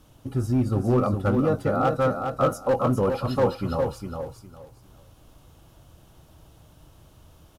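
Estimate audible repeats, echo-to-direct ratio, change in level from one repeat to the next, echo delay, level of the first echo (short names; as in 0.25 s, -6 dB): 3, -6.0 dB, -13.0 dB, 0.407 s, -6.0 dB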